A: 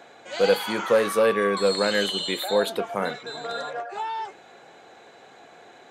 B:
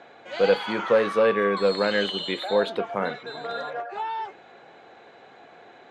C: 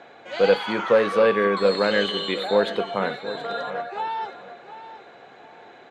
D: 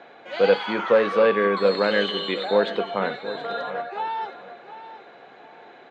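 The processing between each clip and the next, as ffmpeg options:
-af "lowpass=3.6k"
-af "aecho=1:1:722|1444|2166:0.211|0.0528|0.0132,volume=2dB"
-af "highpass=140,lowpass=4.9k"

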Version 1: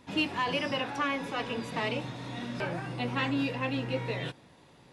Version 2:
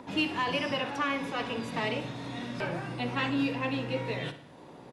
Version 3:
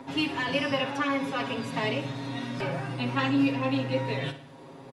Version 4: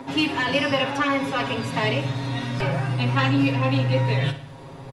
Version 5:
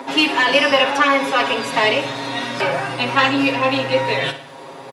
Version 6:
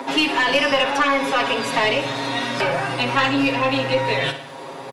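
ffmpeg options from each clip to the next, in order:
-filter_complex "[0:a]acrossover=split=180|1200|2000[a][b][c][d];[b]acompressor=mode=upward:threshold=-39dB:ratio=2.5[e];[a][e][c][d]amix=inputs=4:normalize=0,asplit=2[f][g];[g]adelay=61,lowpass=f=4.4k:p=1,volume=-11dB,asplit=2[h][i];[i]adelay=61,lowpass=f=4.4k:p=1,volume=0.53,asplit=2[j][k];[k]adelay=61,lowpass=f=4.4k:p=1,volume=0.53,asplit=2[l][m];[m]adelay=61,lowpass=f=4.4k:p=1,volume=0.53,asplit=2[n][o];[o]adelay=61,lowpass=f=4.4k:p=1,volume=0.53,asplit=2[p][q];[q]adelay=61,lowpass=f=4.4k:p=1,volume=0.53[r];[f][h][j][l][n][p][r]amix=inputs=7:normalize=0"
-af "aecho=1:1:7.4:0.9"
-af "asubboost=boost=7.5:cutoff=97,asoftclip=type=tanh:threshold=-15dB,volume=6.5dB"
-af "highpass=380,volume=8.5dB"
-filter_complex "[0:a]aeval=exprs='0.794*(cos(1*acos(clip(val(0)/0.794,-1,1)))-cos(1*PI/2))+0.02*(cos(4*acos(clip(val(0)/0.794,-1,1)))-cos(4*PI/2))+0.0355*(cos(5*acos(clip(val(0)/0.794,-1,1)))-cos(5*PI/2))':c=same,acrossover=split=180[a][b];[b]acompressor=threshold=-22dB:ratio=1.5[c];[a][c]amix=inputs=2:normalize=0"

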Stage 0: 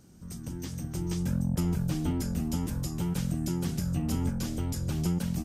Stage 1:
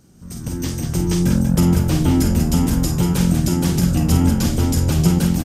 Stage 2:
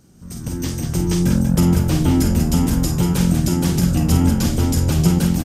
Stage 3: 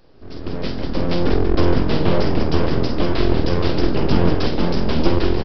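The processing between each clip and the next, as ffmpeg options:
-af "aecho=1:1:49.56|189.5:0.447|0.447,dynaudnorm=f=150:g=5:m=9dB,volume=4dB"
-af anull
-af "highpass=f=55:p=1,aresample=11025,aeval=exprs='abs(val(0))':c=same,aresample=44100,volume=3dB"

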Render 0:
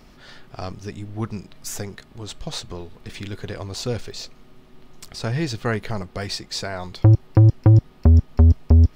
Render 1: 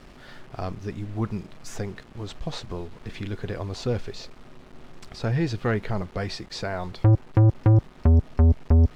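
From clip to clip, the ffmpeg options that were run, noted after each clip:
-af "acrusher=bits=7:mix=0:aa=0.000001,asoftclip=type=tanh:threshold=-14dB,aemphasis=mode=reproduction:type=75fm"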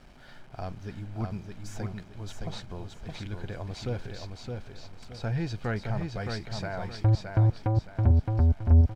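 -af "aecho=1:1:1.3:0.32,aecho=1:1:617|1234|1851|2468:0.596|0.191|0.061|0.0195,volume=-6.5dB"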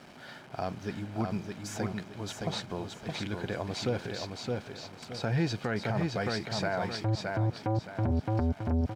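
-af "highpass=160,alimiter=level_in=2dB:limit=-24dB:level=0:latency=1:release=58,volume=-2dB,volume=6dB"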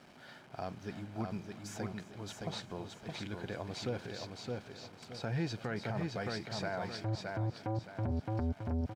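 -af "aecho=1:1:334:0.126,volume=-6.5dB"

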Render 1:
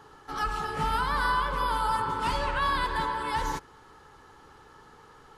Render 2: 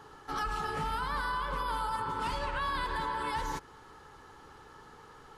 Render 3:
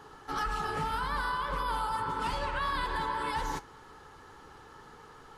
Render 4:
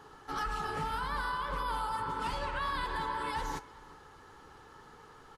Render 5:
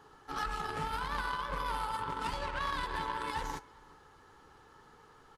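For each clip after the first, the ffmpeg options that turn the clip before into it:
-af "alimiter=level_in=1dB:limit=-24dB:level=0:latency=1:release=136,volume=-1dB"
-af "flanger=delay=4:depth=7.6:regen=-70:speed=1.8:shape=sinusoidal,volume=5.5dB"
-filter_complex "[0:a]asplit=2[a][b];[b]adelay=367.3,volume=-21dB,highshelf=f=4k:g=-8.27[c];[a][c]amix=inputs=2:normalize=0,volume=-2.5dB"
-af "aeval=exprs='0.0668*(cos(1*acos(clip(val(0)/0.0668,-1,1)))-cos(1*PI/2))+0.0133*(cos(3*acos(clip(val(0)/0.0668,-1,1)))-cos(3*PI/2))':c=same,volume=3.5dB"

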